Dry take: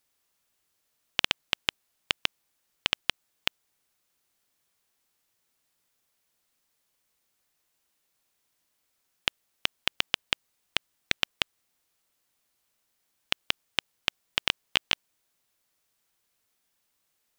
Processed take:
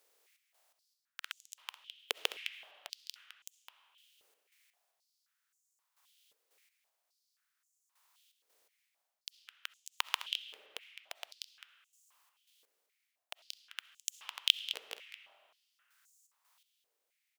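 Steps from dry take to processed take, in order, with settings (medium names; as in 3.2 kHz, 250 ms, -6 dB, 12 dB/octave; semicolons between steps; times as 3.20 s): spectral contrast reduction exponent 0.44; reverse; compression 6:1, threshold -34 dBFS, peak gain reduction 15 dB; reverse; trance gate "xx.x......." 83 bpm -12 dB; delay 210 ms -12 dB; on a send at -13 dB: reverberation RT60 3.2 s, pre-delay 25 ms; on the sum: step-sequenced high-pass 3.8 Hz 460–6900 Hz; trim +3 dB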